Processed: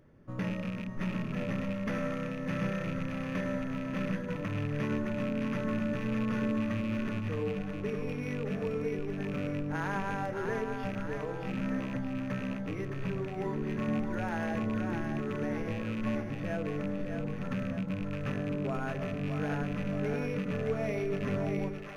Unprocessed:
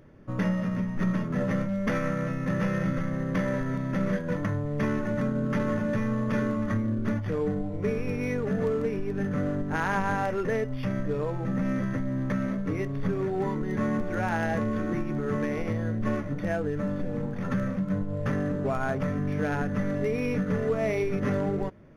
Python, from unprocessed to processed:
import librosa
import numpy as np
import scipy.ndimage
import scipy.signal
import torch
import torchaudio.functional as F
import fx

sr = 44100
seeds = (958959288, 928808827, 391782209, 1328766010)

y = fx.rattle_buzz(x, sr, strikes_db=-27.0, level_db=-26.0)
y = fx.echo_split(y, sr, split_hz=610.0, low_ms=95, high_ms=616, feedback_pct=52, wet_db=-5.0)
y = y * librosa.db_to_amplitude(-7.5)